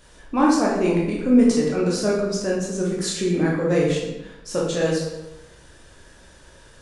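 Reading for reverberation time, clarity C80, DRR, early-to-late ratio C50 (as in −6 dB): 1.0 s, 5.0 dB, −4.5 dB, 2.0 dB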